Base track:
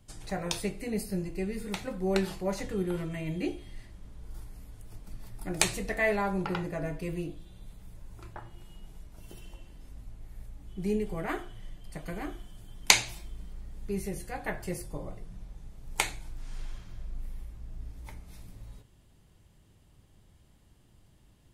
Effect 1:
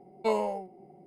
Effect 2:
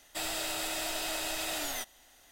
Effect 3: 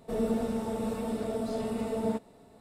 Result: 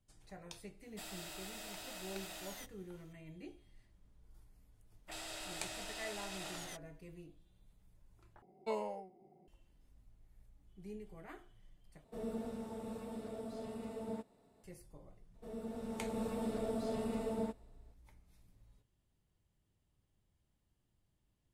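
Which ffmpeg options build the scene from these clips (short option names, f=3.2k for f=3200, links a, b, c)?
-filter_complex "[2:a]asplit=2[a][b];[3:a]asplit=2[c][d];[0:a]volume=-18.5dB[e];[b]afwtdn=0.00562[f];[d]dynaudnorm=f=140:g=9:m=11.5dB[g];[e]asplit=3[h][i][j];[h]atrim=end=8.424[k];[1:a]atrim=end=1.06,asetpts=PTS-STARTPTS,volume=-11dB[l];[i]atrim=start=9.476:end=12.044[m];[c]atrim=end=2.6,asetpts=PTS-STARTPTS,volume=-12.5dB[n];[j]atrim=start=14.636[o];[a]atrim=end=2.31,asetpts=PTS-STARTPTS,volume=-14dB,afade=t=in:d=0.004:c=hsin,afade=t=out:st=2.306:d=0.004:c=hsin,adelay=820[p];[f]atrim=end=2.31,asetpts=PTS-STARTPTS,volume=-11dB,afade=t=in:d=0.004:c=hsin,afade=t=out:st=2.306:d=0.004:c=hsin,adelay=217413S[q];[g]atrim=end=2.6,asetpts=PTS-STARTPTS,volume=-17dB,afade=t=in:d=0.004:c=hsin,afade=t=out:st=2.596:d=0.004:c=hsin,adelay=15340[r];[k][l]acrossfade=d=0.004:c1=hsin:c2=hsin[s];[s][m]acrossfade=d=0.004:c1=hsin:c2=hsin[t];[t][n]acrossfade=d=0.004:c1=hsin:c2=hsin[u];[u][o]acrossfade=d=0.004:c1=hsin:c2=hsin[v];[v][p][q][r]amix=inputs=4:normalize=0"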